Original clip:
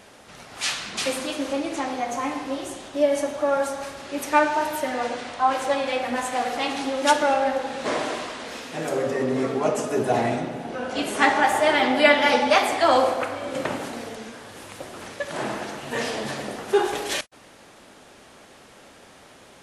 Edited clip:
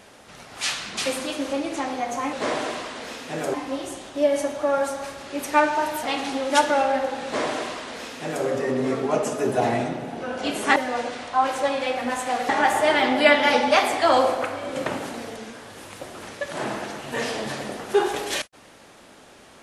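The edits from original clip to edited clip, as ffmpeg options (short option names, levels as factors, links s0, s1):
-filter_complex "[0:a]asplit=6[s0][s1][s2][s3][s4][s5];[s0]atrim=end=2.332[s6];[s1]atrim=start=7.768:end=8.982[s7];[s2]atrim=start=2.328:end=4.822[s8];[s3]atrim=start=6.548:end=11.282[s9];[s4]atrim=start=4.818:end=6.552[s10];[s5]atrim=start=11.278[s11];[s6][s7]acrossfade=d=0.004:c1=hsin:c2=hsin[s12];[s12][s8]acrossfade=d=0.004:c1=hsin:c2=hsin[s13];[s13][s9]acrossfade=d=0.004:c1=hsin:c2=hsin[s14];[s14][s10]acrossfade=d=0.004:c1=hsin:c2=hsin[s15];[s15][s11]acrossfade=d=0.004:c1=hsin:c2=hsin"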